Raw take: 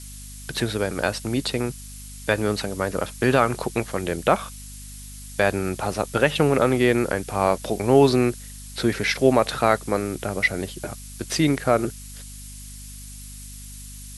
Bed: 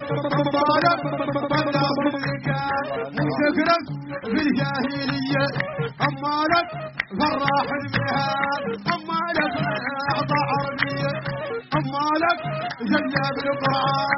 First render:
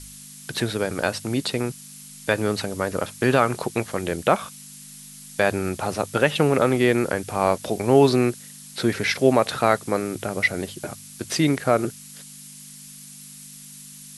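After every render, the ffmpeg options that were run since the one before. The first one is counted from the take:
-af "bandreject=f=50:t=h:w=4,bandreject=f=100:t=h:w=4"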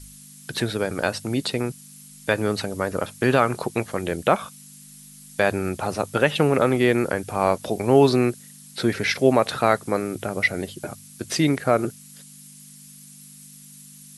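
-af "afftdn=nr=6:nf=-43"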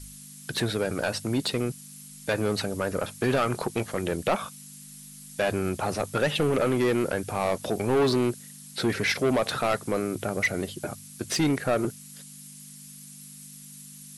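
-af "asoftclip=type=tanh:threshold=0.126"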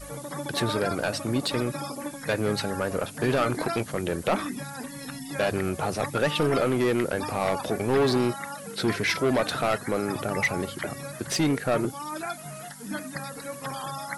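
-filter_complex "[1:a]volume=0.211[s0];[0:a][s0]amix=inputs=2:normalize=0"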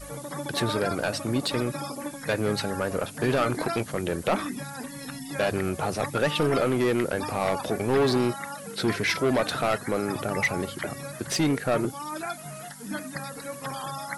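-af anull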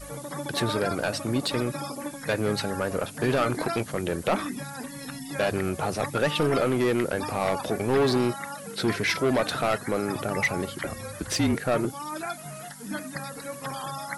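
-filter_complex "[0:a]asettb=1/sr,asplit=3[s0][s1][s2];[s0]atrim=end=10.834[s3];[s1]atrim=start=10.83:end=11.55,asetpts=PTS-STARTPTS,afade=t=in:d=0.004:c=qsin,afade=t=out:st=0.716:d=0.004:c=qsin,afreqshift=-40[s4];[s2]atrim=start=11.546[s5];[s3][s4]acrossfade=d=0.004:c1=hsin:c2=qsin[s6];[s6][s5]acrossfade=d=0.004:c1=qsin:c2=hsin"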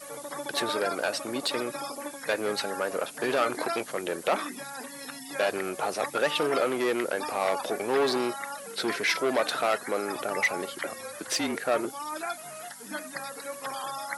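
-af "highpass=380"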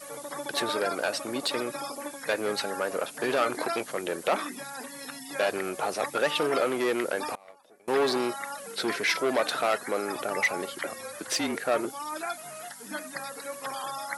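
-filter_complex "[0:a]asettb=1/sr,asplit=3[s0][s1][s2];[s0]atrim=end=7.354[s3];[s1]atrim=start=7.35:end=7.88,asetpts=PTS-STARTPTS,afade=t=in:d=0.004:c=qsin,afade=t=out:st=0.526:d=0.004:c=qsin,agate=range=0.0447:threshold=0.0794:ratio=16:release=100:detection=peak[s4];[s2]atrim=start=7.876[s5];[s3][s4]acrossfade=d=0.004:c1=hsin:c2=qsin[s6];[s6][s5]acrossfade=d=0.004:c1=qsin:c2=hsin"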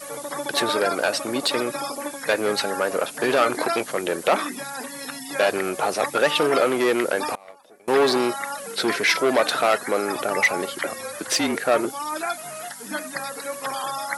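-af "volume=2.11"

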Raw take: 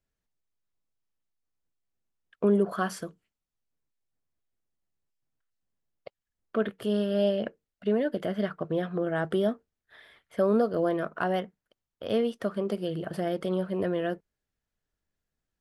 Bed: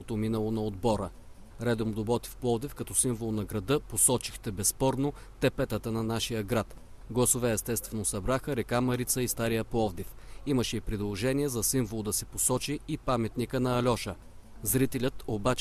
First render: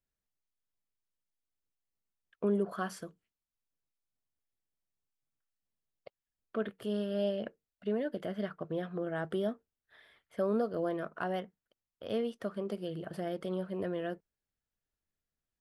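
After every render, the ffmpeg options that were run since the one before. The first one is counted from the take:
-af "volume=0.447"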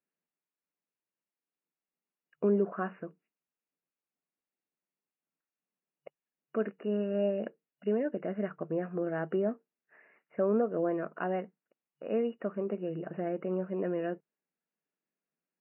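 -af "equalizer=f=360:w=0.81:g=4,afftfilt=real='re*between(b*sr/4096,150,2900)':imag='im*between(b*sr/4096,150,2900)':win_size=4096:overlap=0.75"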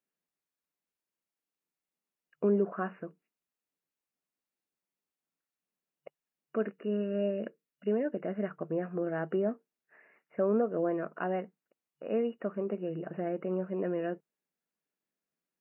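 -filter_complex "[0:a]asettb=1/sr,asplit=3[s0][s1][s2];[s0]atrim=end=6.744[s3];[s1]atrim=start=6.74:end=7.87,asetpts=PTS-STARTPTS,afade=t=in:d=0.004:c=qsin,afade=t=out:st=1.126:d=0.004:c=qsin,equalizer=f=800:w=3.6:g=-11.5[s4];[s2]atrim=start=7.866[s5];[s3][s4]acrossfade=d=0.004:c1=hsin:c2=qsin[s6];[s6][s5]acrossfade=d=0.004:c1=qsin:c2=hsin"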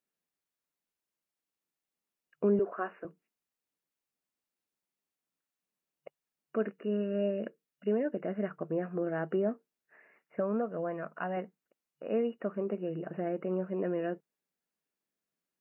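-filter_complex "[0:a]asettb=1/sr,asplit=3[s0][s1][s2];[s0]atrim=end=2.594[s3];[s1]atrim=start=2.59:end=3.05,asetpts=PTS-STARTPTS,afade=t=in:d=0.004:c=qsin,afade=t=out:st=0.456:d=0.004:c=qsin,highpass=f=290:w=0.5412,highpass=f=290:w=1.3066[s4];[s2]atrim=start=3.046[s5];[s3][s4]acrossfade=d=0.004:c1=hsin:c2=qsin[s6];[s6][s5]acrossfade=d=0.004:c1=qsin:c2=hsin,asettb=1/sr,asplit=3[s7][s8][s9];[s7]atrim=end=10.404[s10];[s8]atrim=start=10.4:end=11.37,asetpts=PTS-STARTPTS,afade=t=in:d=0.004:c=qsin,afade=t=out:st=0.966:d=0.004:c=qsin,equalizer=f=360:w=1.6:g=-9[s11];[s9]atrim=start=11.366[s12];[s10][s11]acrossfade=d=0.004:c1=hsin:c2=qsin[s13];[s13][s12]acrossfade=d=0.004:c1=qsin:c2=hsin"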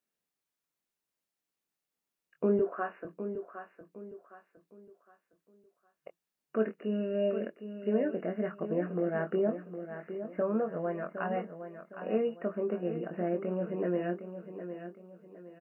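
-filter_complex "[0:a]asplit=2[s0][s1];[s1]adelay=23,volume=0.473[s2];[s0][s2]amix=inputs=2:normalize=0,asplit=2[s3][s4];[s4]aecho=0:1:761|1522|2283|3044:0.316|0.111|0.0387|0.0136[s5];[s3][s5]amix=inputs=2:normalize=0"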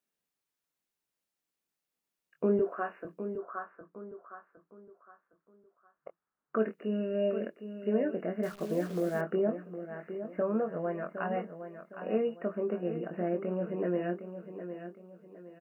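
-filter_complex "[0:a]asplit=3[s0][s1][s2];[s0]afade=t=out:st=3.37:d=0.02[s3];[s1]lowpass=f=1300:t=q:w=3.3,afade=t=in:st=3.37:d=0.02,afade=t=out:st=6.57:d=0.02[s4];[s2]afade=t=in:st=6.57:d=0.02[s5];[s3][s4][s5]amix=inputs=3:normalize=0,asettb=1/sr,asplit=3[s6][s7][s8];[s6]atrim=end=8.434[s9];[s7]atrim=start=8.43:end=9.21,asetpts=PTS-STARTPTS,afade=t=in:d=0.004:c=qsin,afade=t=out:st=0.776:d=0.004:c=qsin,acrusher=bits=9:dc=4:mix=0:aa=0.000001[s10];[s8]atrim=start=9.206[s11];[s9][s10]acrossfade=d=0.004:c1=hsin:c2=qsin[s12];[s12][s11]acrossfade=d=0.004:c1=qsin:c2=hsin"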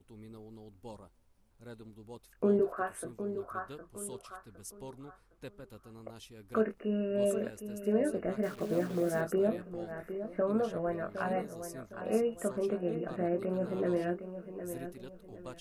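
-filter_complex "[1:a]volume=0.1[s0];[0:a][s0]amix=inputs=2:normalize=0"

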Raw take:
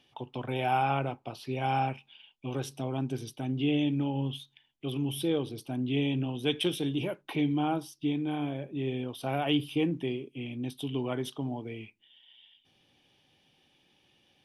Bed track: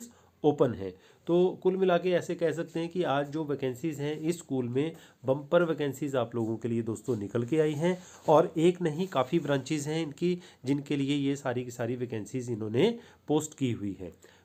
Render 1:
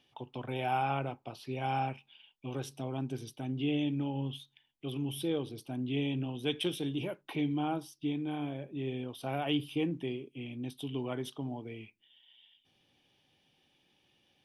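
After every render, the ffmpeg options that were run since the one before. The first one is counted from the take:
-af "volume=0.631"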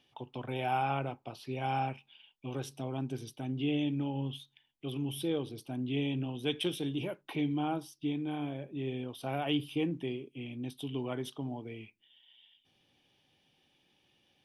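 -af anull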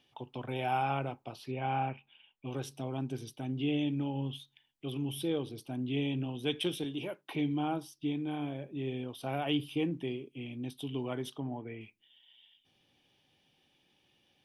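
-filter_complex "[0:a]asettb=1/sr,asplit=3[s0][s1][s2];[s0]atrim=end=1.514[s3];[s1]atrim=start=1.51:end=2.46,asetpts=PTS-STARTPTS,afade=t=in:d=0.004:c=qsin,afade=t=out:st=0.946:d=0.004:c=qsin,lowpass=f=3000:w=0.5412,lowpass=f=3000:w=1.3066[s4];[s2]atrim=start=2.456[s5];[s3][s4]acrossfade=d=0.004:c1=hsin:c2=qsin[s6];[s6][s5]acrossfade=d=0.004:c1=qsin:c2=hsin,asettb=1/sr,asplit=3[s7][s8][s9];[s7]atrim=end=6.844[s10];[s8]atrim=start=6.84:end=7.32,asetpts=PTS-STARTPTS,afade=t=in:d=0.004:c=qsin,afade=t=out:st=0.476:d=0.004:c=qsin,highpass=f=260:p=1[s11];[s9]atrim=start=7.316[s12];[s10][s11]acrossfade=d=0.004:c1=hsin:c2=qsin[s13];[s13][s12]acrossfade=d=0.004:c1=qsin:c2=hsin,asettb=1/sr,asplit=3[s14][s15][s16];[s14]atrim=end=11.404[s17];[s15]atrim=start=11.4:end=11.81,asetpts=PTS-STARTPTS,afade=t=in:d=0.004:c=qsin,afade=t=out:st=0.406:d=0.004:c=qsin,lowpass=f=1800:t=q:w=2.1[s18];[s16]atrim=start=11.806[s19];[s17][s18]acrossfade=d=0.004:c1=hsin:c2=qsin[s20];[s20][s19]acrossfade=d=0.004:c1=qsin:c2=hsin"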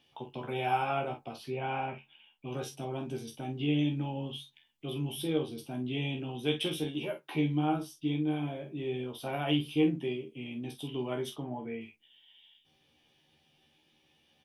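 -filter_complex "[0:a]asplit=2[s0][s1];[s1]adelay=13,volume=0.562[s2];[s0][s2]amix=inputs=2:normalize=0,aecho=1:1:26|48:0.398|0.335"

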